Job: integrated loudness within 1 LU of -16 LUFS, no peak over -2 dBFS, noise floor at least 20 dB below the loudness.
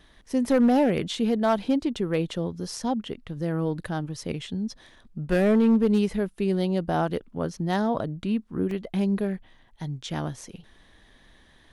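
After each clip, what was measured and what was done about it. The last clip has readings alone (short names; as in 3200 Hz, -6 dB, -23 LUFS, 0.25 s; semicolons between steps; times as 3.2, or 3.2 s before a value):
clipped 0.5%; flat tops at -14.5 dBFS; dropouts 1; longest dropout 2.6 ms; loudness -26.0 LUFS; peak -14.5 dBFS; loudness target -16.0 LUFS
-> clip repair -14.5 dBFS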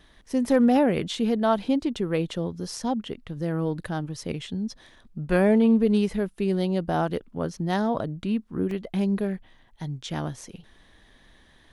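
clipped 0.0%; dropouts 1; longest dropout 2.6 ms
-> interpolate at 8.71, 2.6 ms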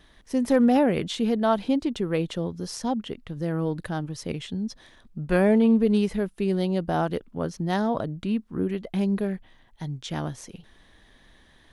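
dropouts 0; loudness -25.5 LUFS; peak -8.5 dBFS; loudness target -16.0 LUFS
-> gain +9.5 dB; limiter -2 dBFS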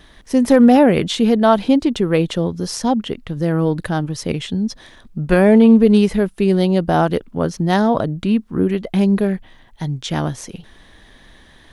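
loudness -16.5 LUFS; peak -2.0 dBFS; noise floor -48 dBFS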